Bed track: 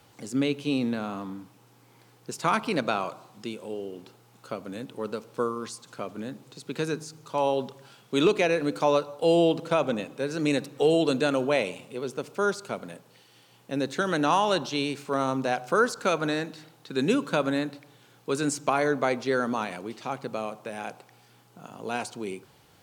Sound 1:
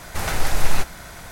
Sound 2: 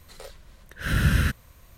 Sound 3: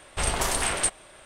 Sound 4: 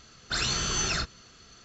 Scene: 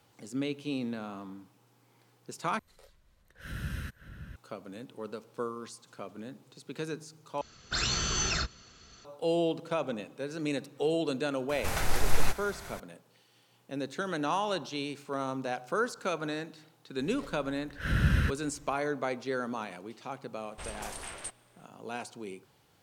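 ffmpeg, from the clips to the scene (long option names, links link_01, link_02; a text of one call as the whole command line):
ffmpeg -i bed.wav -i cue0.wav -i cue1.wav -i cue2.wav -i cue3.wav -filter_complex "[2:a]asplit=2[link_01][link_02];[0:a]volume=-7.5dB[link_03];[link_01]asplit=2[link_04][link_05];[link_05]adelay=565.6,volume=-9dB,highshelf=frequency=4000:gain=-12.7[link_06];[link_04][link_06]amix=inputs=2:normalize=0[link_07];[4:a]equalizer=frequency=60:width_type=o:width=1.1:gain=3[link_08];[link_02]lowpass=frequency=3400:poles=1[link_09];[link_03]asplit=3[link_10][link_11][link_12];[link_10]atrim=end=2.594[link_13];[link_07]atrim=end=1.77,asetpts=PTS-STARTPTS,volume=-16dB[link_14];[link_11]atrim=start=4.356:end=7.414[link_15];[link_08]atrim=end=1.64,asetpts=PTS-STARTPTS,volume=-2dB[link_16];[link_12]atrim=start=9.046[link_17];[1:a]atrim=end=1.31,asetpts=PTS-STARTPTS,volume=-6.5dB,afade=type=in:duration=0.004:curve=hsin,afade=type=out:start_time=1.306:duration=0.004:curve=hsin,adelay=11490[link_18];[link_09]atrim=end=1.77,asetpts=PTS-STARTPTS,volume=-4.5dB,afade=type=in:duration=0.004:curve=hsin,afade=type=out:start_time=1.766:duration=0.004:curve=hsin,adelay=16990[link_19];[3:a]atrim=end=1.25,asetpts=PTS-STARTPTS,volume=-16dB,afade=type=in:duration=0.004:curve=hsin,afade=type=out:start_time=1.246:duration=0.004:curve=hsin,adelay=20410[link_20];[link_13][link_14]acrossfade=duration=0.004:curve1=hsin:curve2=hsin[link_21];[link_21][link_15]acrossfade=duration=0.004:curve1=hsin:curve2=hsin[link_22];[link_22][link_16]acrossfade=duration=0.004:curve1=hsin:curve2=hsin[link_23];[link_23][link_17]acrossfade=duration=0.004:curve1=hsin:curve2=hsin[link_24];[link_24][link_18][link_19][link_20]amix=inputs=4:normalize=0" out.wav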